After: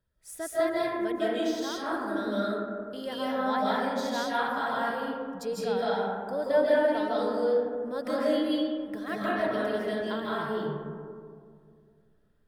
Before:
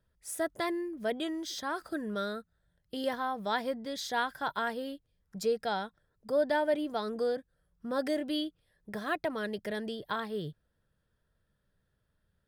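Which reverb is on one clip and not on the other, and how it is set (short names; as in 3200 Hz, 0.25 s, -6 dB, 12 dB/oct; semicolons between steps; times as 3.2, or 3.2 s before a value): digital reverb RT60 2.2 s, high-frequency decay 0.3×, pre-delay 0.115 s, DRR -8 dB; gain -4.5 dB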